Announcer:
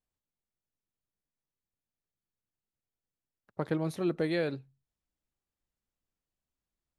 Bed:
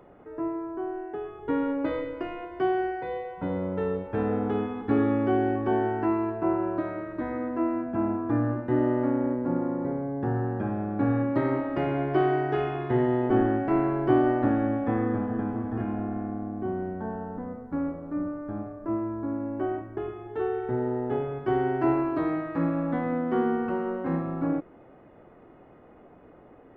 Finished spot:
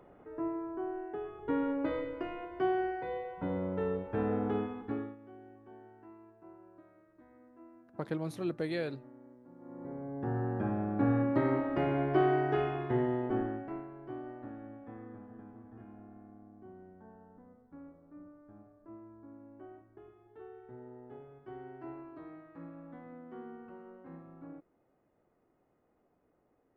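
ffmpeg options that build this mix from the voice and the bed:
-filter_complex "[0:a]adelay=4400,volume=0.596[s0];[1:a]volume=10,afade=t=out:st=4.55:d=0.61:silence=0.0668344,afade=t=in:st=9.58:d=1.08:silence=0.0562341,afade=t=out:st=12.56:d=1.31:silence=0.125893[s1];[s0][s1]amix=inputs=2:normalize=0"

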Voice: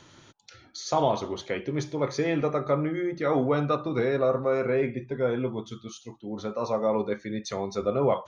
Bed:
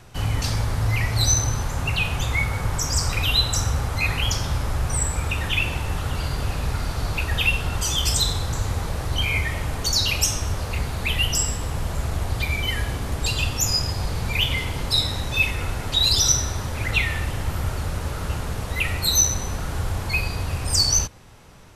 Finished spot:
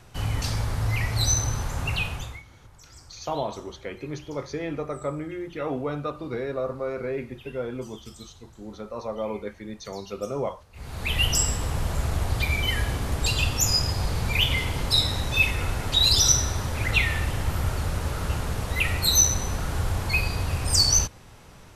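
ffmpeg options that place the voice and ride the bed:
-filter_complex "[0:a]adelay=2350,volume=0.562[s0];[1:a]volume=14.1,afade=t=out:st=1.96:d=0.46:silence=0.0668344,afade=t=in:st=10.73:d=0.51:silence=0.0473151[s1];[s0][s1]amix=inputs=2:normalize=0"

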